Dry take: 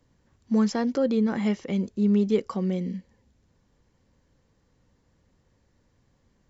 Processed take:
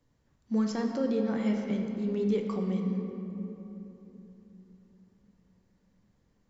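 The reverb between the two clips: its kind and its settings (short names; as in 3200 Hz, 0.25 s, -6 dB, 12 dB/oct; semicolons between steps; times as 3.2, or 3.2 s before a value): shoebox room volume 190 m³, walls hard, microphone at 0.36 m; gain -7 dB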